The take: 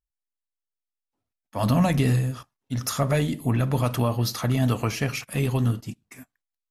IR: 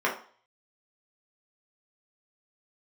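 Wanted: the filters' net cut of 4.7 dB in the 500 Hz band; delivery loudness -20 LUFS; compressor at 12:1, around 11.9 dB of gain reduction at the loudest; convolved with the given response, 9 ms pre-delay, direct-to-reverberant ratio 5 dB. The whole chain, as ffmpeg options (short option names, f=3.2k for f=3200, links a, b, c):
-filter_complex "[0:a]equalizer=f=500:t=o:g=-6,acompressor=threshold=-30dB:ratio=12,asplit=2[a][b];[1:a]atrim=start_sample=2205,adelay=9[c];[b][c]afir=irnorm=-1:irlink=0,volume=-18.5dB[d];[a][d]amix=inputs=2:normalize=0,volume=14.5dB"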